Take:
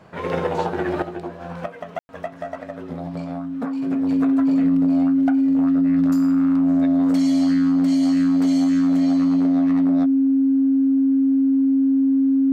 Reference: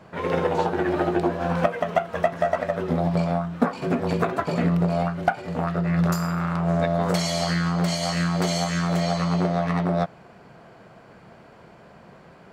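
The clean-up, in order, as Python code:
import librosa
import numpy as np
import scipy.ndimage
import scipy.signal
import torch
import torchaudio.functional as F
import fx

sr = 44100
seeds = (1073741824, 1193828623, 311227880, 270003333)

y = fx.notch(x, sr, hz=270.0, q=30.0)
y = fx.fix_ambience(y, sr, seeds[0], print_start_s=2.59, print_end_s=3.09, start_s=1.99, end_s=2.09)
y = fx.fix_level(y, sr, at_s=1.02, step_db=8.5)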